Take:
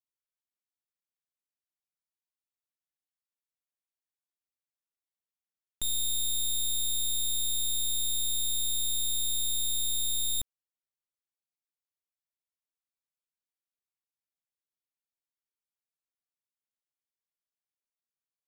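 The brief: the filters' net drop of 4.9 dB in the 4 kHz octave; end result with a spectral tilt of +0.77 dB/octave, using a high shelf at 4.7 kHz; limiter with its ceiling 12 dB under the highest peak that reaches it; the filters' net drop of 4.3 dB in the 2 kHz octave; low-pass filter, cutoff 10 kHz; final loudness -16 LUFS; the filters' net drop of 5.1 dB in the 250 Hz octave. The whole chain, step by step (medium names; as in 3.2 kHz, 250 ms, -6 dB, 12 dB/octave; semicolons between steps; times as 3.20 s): low-pass 10 kHz; peaking EQ 250 Hz -6.5 dB; peaking EQ 2 kHz -5 dB; peaking EQ 4 kHz -7.5 dB; treble shelf 4.7 kHz +9 dB; trim +23 dB; peak limiter -10 dBFS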